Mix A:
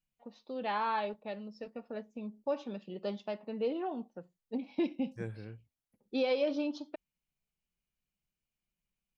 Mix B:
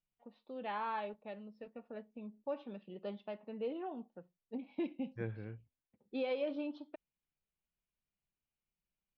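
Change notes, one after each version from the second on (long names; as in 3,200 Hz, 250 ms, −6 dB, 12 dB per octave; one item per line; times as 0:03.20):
first voice −6.0 dB
master: add low-pass filter 3,500 Hz 24 dB per octave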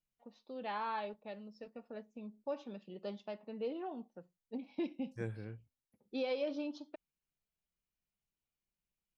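master: remove low-pass filter 3,500 Hz 24 dB per octave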